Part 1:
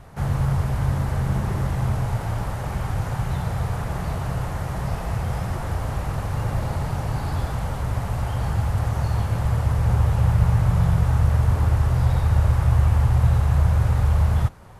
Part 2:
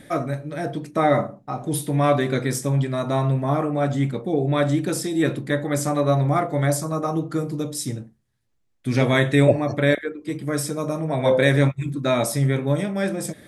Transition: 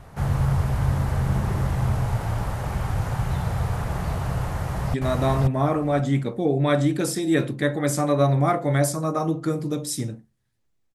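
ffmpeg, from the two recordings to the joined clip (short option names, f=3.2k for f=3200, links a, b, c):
-filter_complex "[0:a]apad=whole_dur=10.94,atrim=end=10.94,atrim=end=4.942[a];[1:a]atrim=start=2.818:end=8.82[b];[a][b]acrossfade=d=0.004:c1=hsin:c2=hsin,asplit=2[c][d];[d]afade=t=in:st=4.48:d=0.01,afade=t=out:st=4.94:d=0.01,aecho=0:1:530|1060|1590:0.944061|0.141609|0.0212414[e];[c][e]amix=inputs=2:normalize=0"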